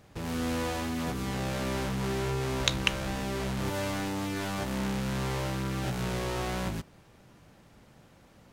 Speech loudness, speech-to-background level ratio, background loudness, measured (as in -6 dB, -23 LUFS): -31.0 LUFS, 1.5 dB, -32.5 LUFS